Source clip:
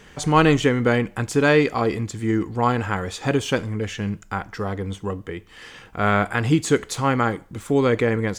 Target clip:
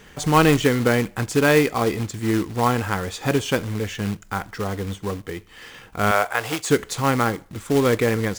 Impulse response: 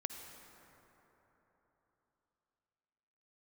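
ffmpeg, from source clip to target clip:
-filter_complex "[0:a]acrusher=bits=3:mode=log:mix=0:aa=0.000001,asettb=1/sr,asplit=3[a][b][c];[a]atrim=end=6.114[d];[b]atrim=start=6.11:end=6.7,asetpts=PTS-STARTPTS,afade=t=in:d=0.004:c=qsin,afade=t=out:st=0.586:d=0.004:c=qsin,lowshelf=f=370:t=q:w=1.5:g=-13.5[e];[c]atrim=start=6.696[f];[d][e]acrossfade=d=0.004:c1=hsin:c2=qsin[g];[g][f]acrossfade=d=0.004:c1=qsin:c2=hsin"

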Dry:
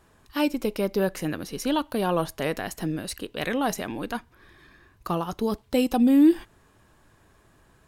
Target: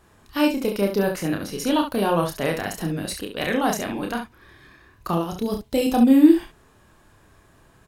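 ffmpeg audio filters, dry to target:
-filter_complex "[0:a]asettb=1/sr,asplit=3[a][b][c];[a]atrim=end=5.154[d];[b]atrim=start=5.15:end=5.83,asetpts=PTS-STARTPTS,afade=t=in:d=0.004:c=qsin,afade=t=out:st=0.676:d=0.004:c=qsin,equalizer=f=1.2k:t=o:w=1.7:g=-6.5[e];[c]atrim=start=5.826[f];[d][e]acrossfade=d=0.004:c1=hsin:c2=qsin[g];[g][f]acrossfade=d=0.004:c1=qsin:c2=hsin,aecho=1:1:30|69:0.631|0.422,volume=2dB"

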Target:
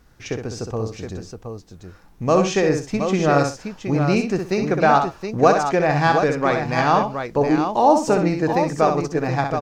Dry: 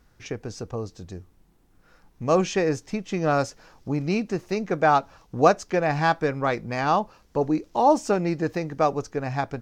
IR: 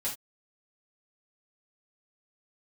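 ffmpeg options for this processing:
-filter_complex "[0:a]asplit=2[a][b];[b]alimiter=limit=-14.5dB:level=0:latency=1:release=332,volume=-2.5dB[c];[a][c]amix=inputs=2:normalize=0,aecho=1:1:63|124|720:0.501|0.119|0.447"

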